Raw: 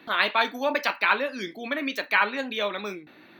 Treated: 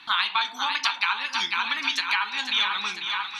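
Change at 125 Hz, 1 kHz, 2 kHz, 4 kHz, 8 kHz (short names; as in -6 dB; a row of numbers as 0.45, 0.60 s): n/a, 0.0 dB, 0.0 dB, +8.0 dB, +9.0 dB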